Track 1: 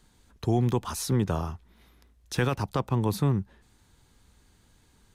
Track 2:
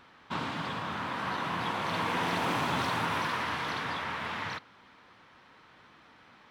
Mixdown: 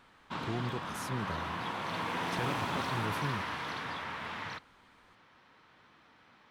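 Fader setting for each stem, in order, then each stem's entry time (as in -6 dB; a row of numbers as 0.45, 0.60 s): -12.5, -4.5 dB; 0.00, 0.00 s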